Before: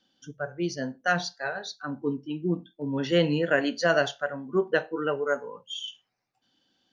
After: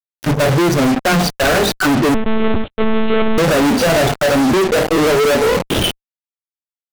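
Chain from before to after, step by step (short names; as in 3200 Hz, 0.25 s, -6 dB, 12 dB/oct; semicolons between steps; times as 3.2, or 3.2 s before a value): median filter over 41 samples; compressor 3:1, threshold -37 dBFS, peak gain reduction 13.5 dB; notches 50/100/150/200/250 Hz; fuzz box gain 63 dB, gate -57 dBFS; 2.14–3.38 monotone LPC vocoder at 8 kHz 220 Hz; gain +1.5 dB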